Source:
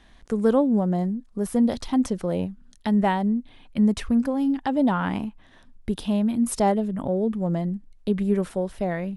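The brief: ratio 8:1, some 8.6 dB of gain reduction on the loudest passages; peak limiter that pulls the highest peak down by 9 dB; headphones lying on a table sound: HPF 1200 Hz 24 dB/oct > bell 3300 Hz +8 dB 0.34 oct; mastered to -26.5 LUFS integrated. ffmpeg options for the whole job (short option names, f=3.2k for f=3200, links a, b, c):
-af "acompressor=threshold=-25dB:ratio=8,alimiter=level_in=1dB:limit=-24dB:level=0:latency=1,volume=-1dB,highpass=f=1.2k:w=0.5412,highpass=f=1.2k:w=1.3066,equalizer=f=3.3k:t=o:w=0.34:g=8,volume=18dB"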